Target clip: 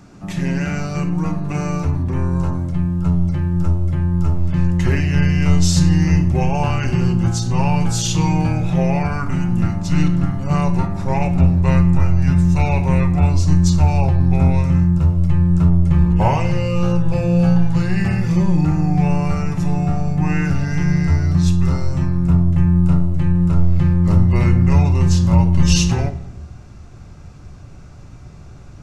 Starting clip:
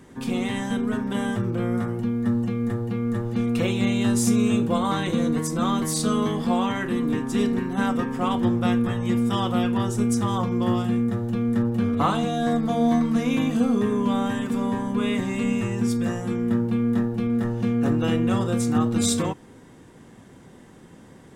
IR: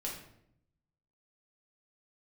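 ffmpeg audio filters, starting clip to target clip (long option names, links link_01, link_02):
-filter_complex "[0:a]asubboost=boost=7:cutoff=110,asplit=2[link_01][link_02];[1:a]atrim=start_sample=2205,asetrate=42777,aresample=44100[link_03];[link_02][link_03]afir=irnorm=-1:irlink=0,volume=-9dB[link_04];[link_01][link_04]amix=inputs=2:normalize=0,asetrate=32667,aresample=44100,volume=2.5dB"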